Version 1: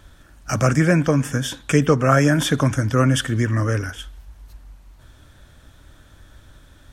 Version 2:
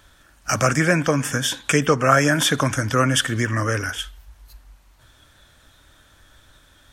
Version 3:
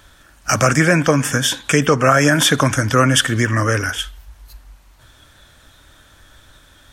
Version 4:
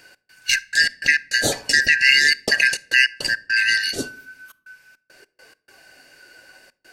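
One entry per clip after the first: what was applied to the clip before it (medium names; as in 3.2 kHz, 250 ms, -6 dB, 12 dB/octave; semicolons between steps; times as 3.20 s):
spectral noise reduction 7 dB; bass shelf 490 Hz -10 dB; in parallel at -1 dB: compression, threshold -31 dBFS, peak gain reduction 16 dB; on the sum: trim +2.5 dB
loudness maximiser +6 dB; trim -1 dB
four frequency bands reordered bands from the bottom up 3142; trance gate "x.xx.x.x.xxxxxx" 103 bpm -60 dB; simulated room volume 1000 m³, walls furnished, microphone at 0.3 m; trim -2 dB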